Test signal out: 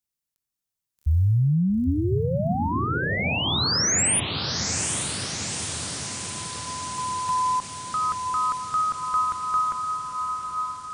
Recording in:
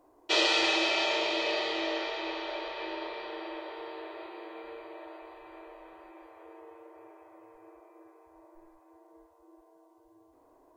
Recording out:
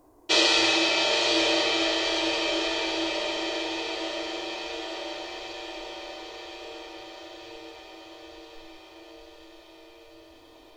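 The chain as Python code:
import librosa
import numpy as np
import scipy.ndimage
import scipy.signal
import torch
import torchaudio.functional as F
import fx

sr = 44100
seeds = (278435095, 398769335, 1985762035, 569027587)

y = fx.bass_treble(x, sr, bass_db=10, treble_db=7)
y = fx.echo_diffused(y, sr, ms=851, feedback_pct=68, wet_db=-5.0)
y = fx.end_taper(y, sr, db_per_s=530.0)
y = F.gain(torch.from_numpy(y), 2.5).numpy()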